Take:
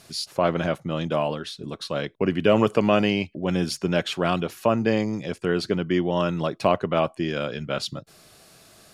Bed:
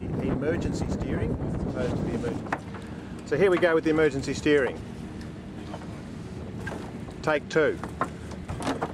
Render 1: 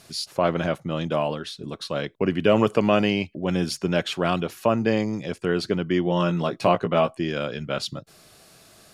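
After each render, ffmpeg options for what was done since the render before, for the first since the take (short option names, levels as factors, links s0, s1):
-filter_complex "[0:a]asettb=1/sr,asplit=3[s0][s1][s2];[s0]atrim=end=6.054[s3];[s1]atrim=start=6.05:end=7.17,asetpts=PTS-STARTPTS,afade=t=in:d=0.004:c=qsin,afade=t=out:st=1.116:d=0.004:c=qsin,asplit=2[s4][s5];[s5]adelay=17,volume=0.531[s6];[s4][s6]amix=inputs=2:normalize=0,atrim=end_sample=49392[s7];[s2]atrim=start=7.166[s8];[s3][s7]acrossfade=d=0.004:c1=hsin:c2=qsin[s9];[s9][s8]acrossfade=d=0.004:c1=qsin:c2=hsin"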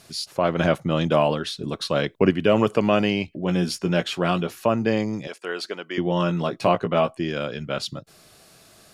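-filter_complex "[0:a]asettb=1/sr,asplit=3[s0][s1][s2];[s0]atrim=end=3.264[s3];[s1]atrim=start=3.26:end=4.62,asetpts=PTS-STARTPTS,afade=t=in:d=0.004:c=qsin,afade=t=out:st=1.356:d=0.004:c=qsin,asplit=2[s4][s5];[s5]adelay=17,volume=0.398[s6];[s4][s6]amix=inputs=2:normalize=0,atrim=end_sample=59976[s7];[s2]atrim=start=4.616[s8];[s3][s7]acrossfade=d=0.004:c1=hsin:c2=qsin[s9];[s9][s8]acrossfade=d=0.004:c1=qsin:c2=hsin,asettb=1/sr,asplit=3[s10][s11][s12];[s10]atrim=end=5.274[s13];[s11]atrim=start=5.27:end=5.98,asetpts=PTS-STARTPTS,afade=t=in:d=0.004:c=qsin,afade=t=out:st=0.706:d=0.004:c=qsin,highpass=580[s14];[s12]atrim=start=5.976[s15];[s13][s14]acrossfade=d=0.004:c1=hsin:c2=qsin[s16];[s16][s15]acrossfade=d=0.004:c1=qsin:c2=hsin,asplit=3[s17][s18][s19];[s17]atrim=end=0.592[s20];[s18]atrim=start=0.588:end=2.312,asetpts=PTS-STARTPTS,volume=1.78[s21];[s19]atrim=start=2.308[s22];[s20][s21]acrossfade=d=0.004:c1=hsin:c2=hsin[s23];[s23][s22]acrossfade=d=0.004:c1=hsin:c2=hsin"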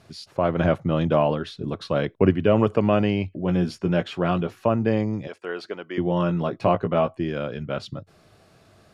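-af "lowpass=f=1500:p=1,equalizer=f=94:t=o:w=0.46:g=9"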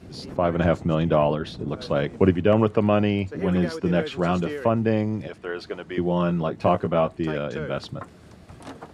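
-filter_complex "[1:a]volume=0.282[s0];[0:a][s0]amix=inputs=2:normalize=0"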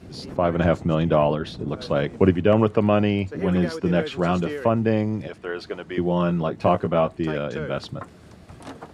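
-af "volume=1.12"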